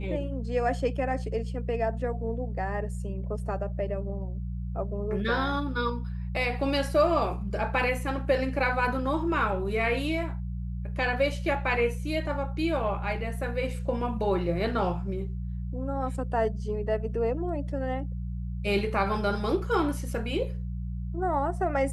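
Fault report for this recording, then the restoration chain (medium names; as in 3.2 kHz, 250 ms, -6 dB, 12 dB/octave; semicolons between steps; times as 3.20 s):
hum 60 Hz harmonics 3 -33 dBFS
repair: de-hum 60 Hz, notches 3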